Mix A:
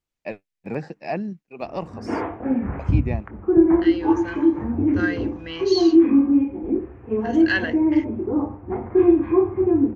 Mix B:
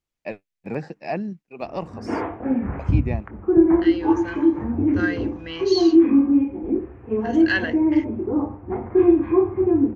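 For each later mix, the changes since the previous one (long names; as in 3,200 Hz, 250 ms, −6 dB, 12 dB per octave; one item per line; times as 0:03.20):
nothing changed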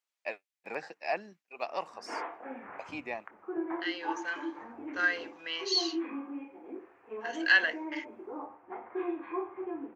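background −5.5 dB
master: add high-pass filter 790 Hz 12 dB per octave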